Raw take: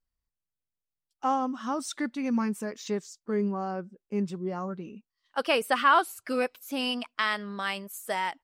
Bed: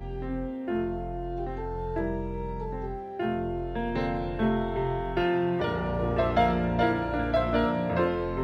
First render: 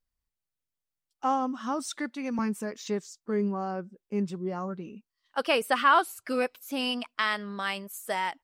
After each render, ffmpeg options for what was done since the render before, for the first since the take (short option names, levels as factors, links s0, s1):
-filter_complex "[0:a]asettb=1/sr,asplit=3[s0][s1][s2];[s0]atrim=end=1.994[s3];[s1]atrim=start=1.99:end=2.39,asetpts=PTS-STARTPTS,afade=t=in:d=0.004:c=qsin,afade=t=out:st=0.396:d=0.004:c=qsin,highpass=290[s4];[s2]atrim=start=2.386[s5];[s3][s4]acrossfade=d=0.004:c1=hsin:c2=qsin[s6];[s6][s5]acrossfade=d=0.004:c1=qsin:c2=hsin"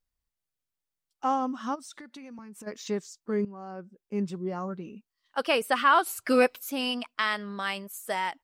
-filter_complex "[0:a]asplit=3[s0][s1][s2];[s0]afade=t=out:st=1.74:d=0.02[s3];[s1]acompressor=threshold=0.00891:ratio=16:attack=3.2:release=140:knee=1:detection=peak,afade=t=in:st=1.74:d=0.02,afade=t=out:st=2.66:d=0.02[s4];[s2]afade=t=in:st=2.66:d=0.02[s5];[s3][s4][s5]amix=inputs=3:normalize=0,asettb=1/sr,asplit=3[s6][s7][s8];[s6]atrim=end=6.064[s9];[s7]atrim=start=6.06:end=6.7,asetpts=PTS-STARTPTS,afade=t=in:d=0.004:c=qsin,afade=t=out:st=0.636:d=0.004:c=qsin,acontrast=71[s10];[s8]atrim=start=6.696[s11];[s9][s10]acrossfade=d=0.004:c1=hsin:c2=qsin[s12];[s12][s11]acrossfade=d=0.004:c1=qsin:c2=hsin,asplit=2[s13][s14];[s13]atrim=end=3.45,asetpts=PTS-STARTPTS,afade=t=out:st=3.446:d=0.004:c=hsin:silence=0.16788[s15];[s14]atrim=start=3.45,asetpts=PTS-STARTPTS,afade=t=in:d=0.82:silence=0.16788[s16];[s15][s16]concat=n=2:v=0:a=1"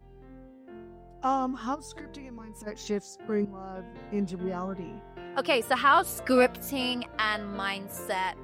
-filter_complex "[1:a]volume=0.141[s0];[0:a][s0]amix=inputs=2:normalize=0"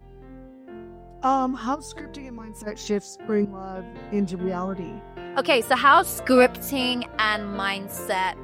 -af "volume=1.88"